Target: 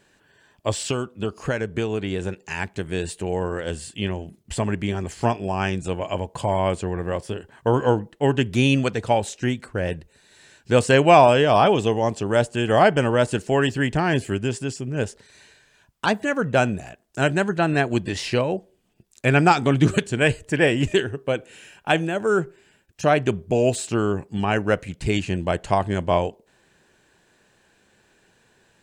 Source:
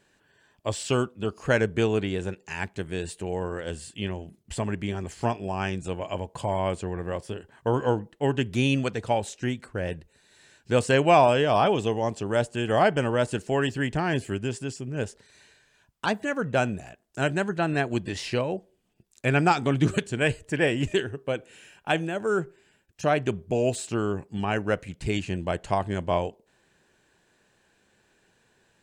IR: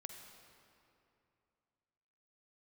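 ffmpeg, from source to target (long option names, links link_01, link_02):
-filter_complex "[0:a]asettb=1/sr,asplit=3[link_01][link_02][link_03];[link_01]atrim=end=0.814[link_04];[link_02]atrim=start=0.81:end=2.88,asetpts=PTS-STARTPTS,afade=type=in:duration=0.004:curve=qsin,afade=type=out:start_time=2.066:duration=0.004:curve=qsin,acompressor=threshold=-26dB:ratio=6[link_05];[link_03]atrim=start=2.876[link_06];[link_04][link_05]acrossfade=duration=0.004:curve1=hsin:curve2=qsin[link_07];[link_07][link_06]acrossfade=duration=0.004:curve1=qsin:curve2=hsin,volume=5dB"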